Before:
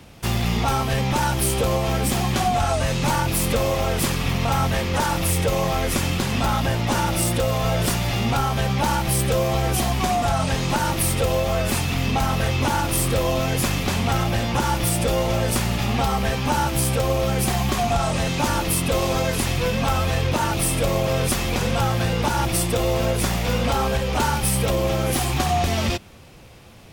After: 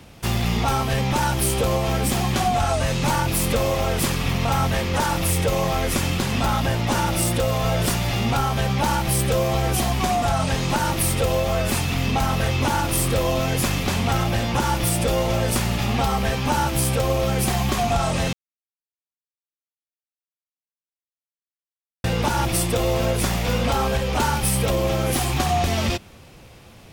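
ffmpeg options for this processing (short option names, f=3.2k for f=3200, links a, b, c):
-filter_complex "[0:a]asplit=3[a][b][c];[a]atrim=end=18.33,asetpts=PTS-STARTPTS,afade=t=out:st=18.326:d=0.004:c=hsin[d];[b]atrim=start=18.33:end=22.04,asetpts=PTS-STARTPTS,volume=0[e];[c]atrim=start=22.04,asetpts=PTS-STARTPTS,afade=t=in:d=0.004:c=hsin[f];[d][e][f]concat=n=3:v=0:a=1"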